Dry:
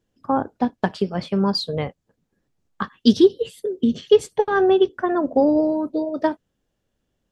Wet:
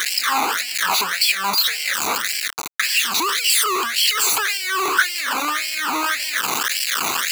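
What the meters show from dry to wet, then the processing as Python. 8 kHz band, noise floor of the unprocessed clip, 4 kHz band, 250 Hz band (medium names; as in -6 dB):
no reading, -76 dBFS, +13.5 dB, -15.5 dB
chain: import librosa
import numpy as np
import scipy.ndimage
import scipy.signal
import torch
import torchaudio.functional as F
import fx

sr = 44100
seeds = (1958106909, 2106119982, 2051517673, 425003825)

y = np.sign(x) * np.sqrt(np.mean(np.square(x)))
y = fx.phaser_stages(y, sr, stages=12, low_hz=540.0, high_hz=1200.0, hz=1.8, feedback_pct=15)
y = fx.filter_lfo_highpass(y, sr, shape='sine', hz=1.8, low_hz=540.0, high_hz=3500.0, q=1.7)
y = y * librosa.db_to_amplitude(7.0)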